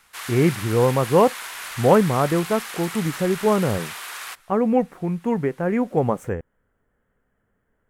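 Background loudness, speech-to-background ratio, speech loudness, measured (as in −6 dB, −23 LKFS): −32.5 LKFS, 11.0 dB, −21.5 LKFS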